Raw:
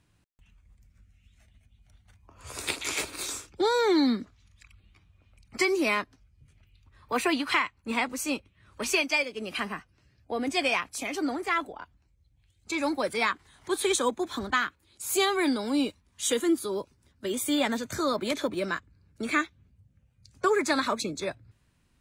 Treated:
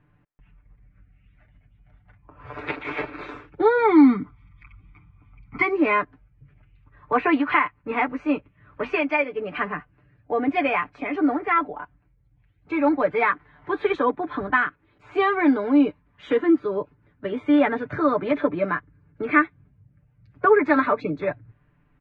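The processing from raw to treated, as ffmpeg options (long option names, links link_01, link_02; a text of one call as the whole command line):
ffmpeg -i in.wav -filter_complex "[0:a]asplit=3[link_01][link_02][link_03];[link_01]afade=type=out:start_time=3.77:duration=0.02[link_04];[link_02]aecho=1:1:0.9:0.8,afade=type=in:start_time=3.77:duration=0.02,afade=type=out:start_time=5.66:duration=0.02[link_05];[link_03]afade=type=in:start_time=5.66:duration=0.02[link_06];[link_04][link_05][link_06]amix=inputs=3:normalize=0,lowpass=frequency=2100:width=0.5412,lowpass=frequency=2100:width=1.3066,aecho=1:1:6.8:0.75,volume=5dB" out.wav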